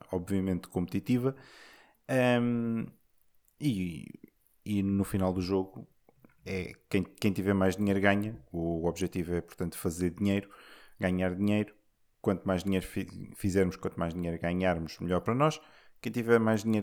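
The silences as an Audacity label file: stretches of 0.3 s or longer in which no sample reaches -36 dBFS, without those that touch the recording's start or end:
1.310000	2.090000	silence
2.850000	3.620000	silence
4.150000	4.660000	silence
5.800000	6.470000	silence
10.430000	11.010000	silence
11.680000	12.240000	silence
15.560000	16.040000	silence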